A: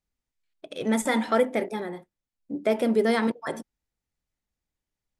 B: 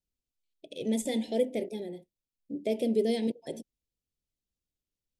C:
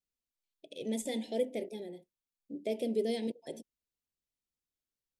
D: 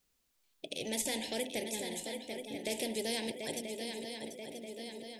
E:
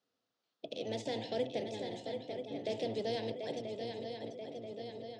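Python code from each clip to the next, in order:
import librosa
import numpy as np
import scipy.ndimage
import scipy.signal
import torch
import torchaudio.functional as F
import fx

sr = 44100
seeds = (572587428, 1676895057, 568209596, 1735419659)

y1 = scipy.signal.sosfilt(scipy.signal.cheby1(2, 1.0, [520.0, 3000.0], 'bandstop', fs=sr, output='sos'), x)
y1 = y1 * 10.0 ** (-4.0 / 20.0)
y2 = fx.low_shelf(y1, sr, hz=170.0, db=-7.5)
y2 = y2 * 10.0 ** (-3.5 / 20.0)
y3 = fx.echo_swing(y2, sr, ms=984, ratio=3, feedback_pct=44, wet_db=-11)
y3 = fx.spectral_comp(y3, sr, ratio=2.0)
y4 = fx.octave_divider(y3, sr, octaves=1, level_db=3.0)
y4 = fx.cabinet(y4, sr, low_hz=120.0, low_slope=24, high_hz=5200.0, hz=(150.0, 280.0, 480.0, 690.0, 1300.0, 2300.0), db=(-10, 6, 8, 8, 6, -6))
y4 = y4 * 10.0 ** (-5.0 / 20.0)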